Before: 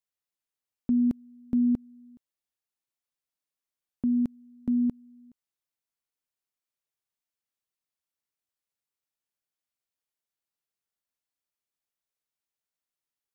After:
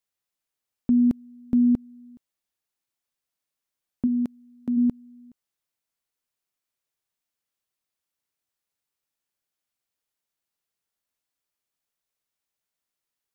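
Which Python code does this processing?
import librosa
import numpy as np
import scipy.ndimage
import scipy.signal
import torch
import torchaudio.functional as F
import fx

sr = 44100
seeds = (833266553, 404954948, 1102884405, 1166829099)

y = fx.highpass(x, sr, hz=300.0, slope=6, at=(4.06, 4.76), fade=0.02)
y = F.gain(torch.from_numpy(y), 4.5).numpy()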